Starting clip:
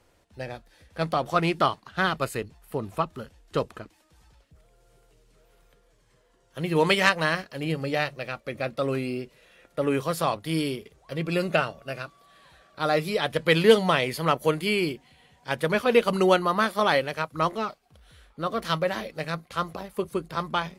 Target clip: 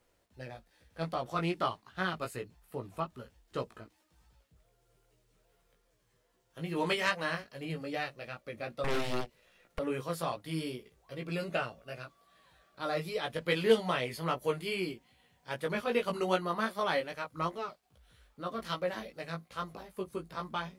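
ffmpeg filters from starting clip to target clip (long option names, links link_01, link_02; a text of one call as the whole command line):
ffmpeg -i in.wav -filter_complex "[0:a]flanger=delay=16:depth=2.2:speed=2.5,asettb=1/sr,asplit=3[link_01][link_02][link_03];[link_01]atrim=end=8.844[link_04];[link_02]atrim=start=8.84:end=9.79,asetpts=PTS-STARTPTS,afade=type=in:duration=0.004:curve=qsin,afade=type=out:start_time=0.946:duration=0.004:curve=qsin,aeval=exprs='0.1*(cos(1*acos(clip(val(0)/0.1,-1,1)))-cos(1*PI/2))+0.0501*(cos(8*acos(clip(val(0)/0.1,-1,1)))-cos(8*PI/2))':channel_layout=same[link_05];[link_03]atrim=start=9.786[link_06];[link_04][link_05]acrossfade=duration=0.004:curve1=hsin:curve2=qsin[link_07];[link_07][link_06]acrossfade=duration=0.004:curve1=qsin:curve2=hsin,acrusher=bits=11:mix=0:aa=0.000001,volume=-6.5dB" out.wav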